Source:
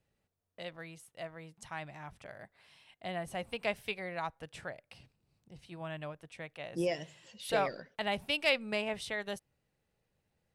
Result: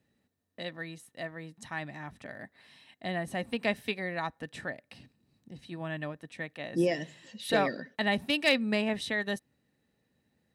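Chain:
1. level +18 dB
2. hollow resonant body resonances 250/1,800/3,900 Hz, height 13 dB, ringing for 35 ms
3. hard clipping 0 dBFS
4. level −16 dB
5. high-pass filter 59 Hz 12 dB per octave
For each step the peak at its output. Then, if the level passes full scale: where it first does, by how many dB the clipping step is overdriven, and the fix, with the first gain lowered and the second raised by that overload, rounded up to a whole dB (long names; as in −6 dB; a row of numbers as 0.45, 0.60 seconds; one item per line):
+2.5, +4.5, 0.0, −16.0, −15.0 dBFS
step 1, 4.5 dB
step 1 +13 dB, step 4 −11 dB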